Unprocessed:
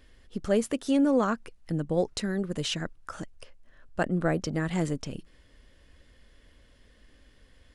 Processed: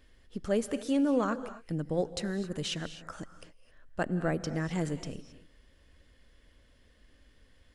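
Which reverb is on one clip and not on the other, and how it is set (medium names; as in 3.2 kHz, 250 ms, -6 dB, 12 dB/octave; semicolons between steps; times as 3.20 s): gated-style reverb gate 290 ms rising, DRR 12 dB; trim -4 dB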